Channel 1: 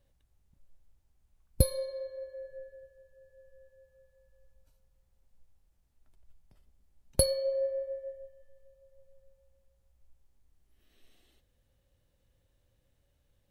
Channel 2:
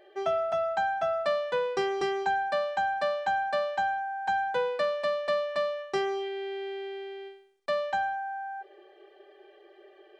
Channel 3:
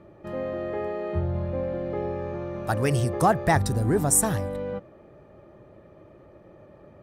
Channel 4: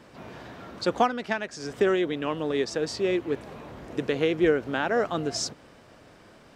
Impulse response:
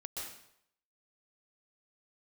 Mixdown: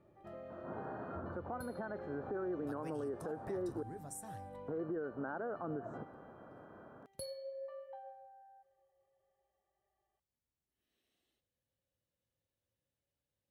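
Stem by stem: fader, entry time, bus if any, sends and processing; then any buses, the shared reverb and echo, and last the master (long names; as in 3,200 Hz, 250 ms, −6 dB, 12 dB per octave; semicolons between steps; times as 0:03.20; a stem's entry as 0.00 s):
−14.5 dB, 0.00 s, bus A, no send, no processing
−18.5 dB, 0.00 s, no bus, send −10 dB, four-pole ladder band-pass 850 Hz, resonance 25%; comb filter 1 ms, depth 88%
−12.0 dB, 0.00 s, no bus, send −20.5 dB, downward compressor 3 to 1, threshold −33 dBFS, peak gain reduction 13 dB; flanger 0.42 Hz, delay 7.5 ms, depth 6.5 ms, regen −64%
−1.5 dB, 0.50 s, muted 0:03.83–0:04.68, bus A, no send, elliptic low-pass filter 1,500 Hz, stop band 40 dB
bus A: 0.0 dB, high-pass filter 110 Hz; downward compressor, threshold −33 dBFS, peak gain reduction 14.5 dB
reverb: on, RT60 0.70 s, pre-delay 117 ms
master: brickwall limiter −32 dBFS, peak gain reduction 10 dB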